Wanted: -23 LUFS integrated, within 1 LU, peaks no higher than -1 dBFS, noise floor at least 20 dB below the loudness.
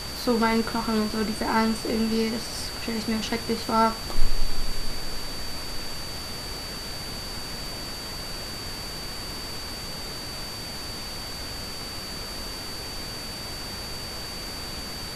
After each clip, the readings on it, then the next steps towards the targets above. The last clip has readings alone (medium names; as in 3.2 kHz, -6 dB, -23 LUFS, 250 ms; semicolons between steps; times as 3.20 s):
steady tone 4.6 kHz; tone level -36 dBFS; noise floor -35 dBFS; noise floor target -50 dBFS; loudness -29.5 LUFS; peak level -5.0 dBFS; loudness target -23.0 LUFS
-> band-stop 4.6 kHz, Q 30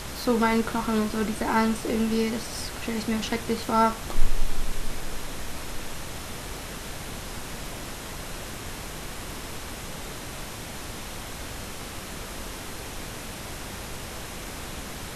steady tone not found; noise floor -38 dBFS; noise floor target -51 dBFS
-> noise print and reduce 13 dB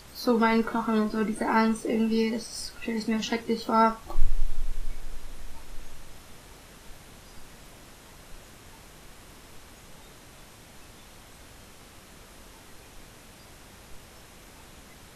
noise floor -51 dBFS; loudness -27.0 LUFS; peak level -5.5 dBFS; loudness target -23.0 LUFS
-> trim +4 dB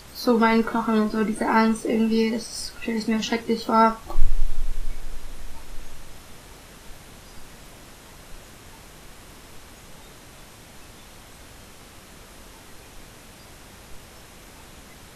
loudness -23.0 LUFS; peak level -1.5 dBFS; noise floor -47 dBFS